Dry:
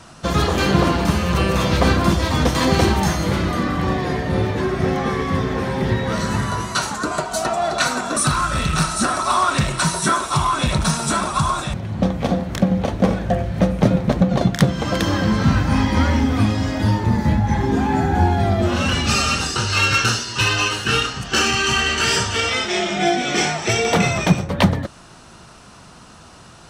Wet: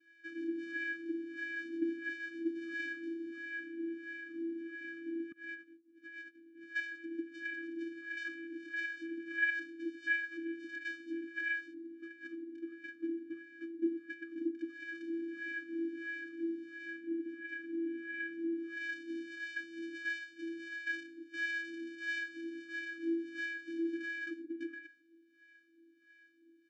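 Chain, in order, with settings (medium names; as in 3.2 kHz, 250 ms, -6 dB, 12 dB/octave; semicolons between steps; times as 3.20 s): vocoder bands 4, square 333 Hz; delay 152 ms -21 dB; wah-wah 1.5 Hz 460–1900 Hz, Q 4.2; 5.32–6.64 s: compressor with a negative ratio -45 dBFS, ratio -0.5; brick-wall FIR band-stop 340–1200 Hz; trim -2 dB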